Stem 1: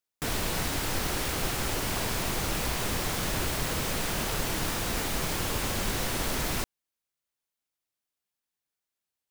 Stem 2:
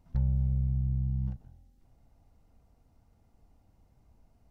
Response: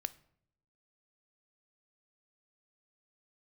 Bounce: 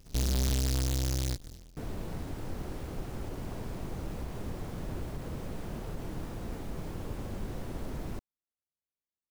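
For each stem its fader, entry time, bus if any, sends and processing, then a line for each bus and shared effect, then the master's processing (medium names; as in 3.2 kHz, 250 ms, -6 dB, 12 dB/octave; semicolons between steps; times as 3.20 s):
-13.5 dB, 1.55 s, no send, tilt shelf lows +9.5 dB
+2.5 dB, 0.00 s, no send, square wave that keeps the level; delay time shaken by noise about 5 kHz, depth 0.27 ms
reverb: none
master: peak limiter -26.5 dBFS, peak gain reduction 9.5 dB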